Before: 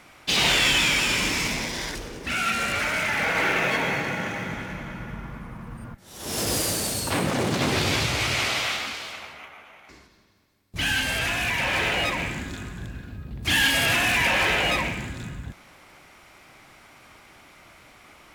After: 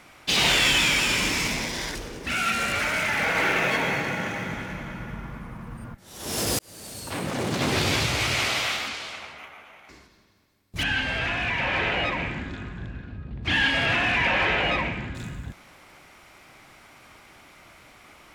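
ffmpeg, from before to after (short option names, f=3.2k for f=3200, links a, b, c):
-filter_complex "[0:a]asettb=1/sr,asplit=3[a][b][c];[a]atrim=end=8.884[d];[b]atrim=start=8.88:end=9.38,asetpts=PTS-STARTPTS,afade=t=in:d=0.004:c=qsin,afade=t=out:st=0.496:d=0.004:c=qsin,lowpass=10k[e];[c]atrim=start=9.376[f];[d][e]acrossfade=d=0.004:c1=hsin:c2=qsin[g];[g][f]acrossfade=d=0.004:c1=qsin:c2=hsin,asettb=1/sr,asplit=3[h][i][j];[h]atrim=end=10.834[k];[i]atrim=start=10.83:end=15.15,asetpts=PTS-STARTPTS,afade=t=in:d=0.004:c=qsin,afade=t=out:st=4.316:d=0.004:c=qsin,lowpass=3.1k[l];[j]atrim=start=15.146[m];[k][l]acrossfade=d=0.004:c1=hsin:c2=qsin[n];[n][m]acrossfade=d=0.004:c1=qsin:c2=hsin,asplit=2[o][p];[o]atrim=end=6.59,asetpts=PTS-STARTPTS,afade=t=out:st=6.586:d=0.004:c=hsin[q];[p]atrim=start=6.59,asetpts=PTS-STARTPTS,afade=t=in:d=1.2[r];[q][r]concat=n=2:v=0:a=1"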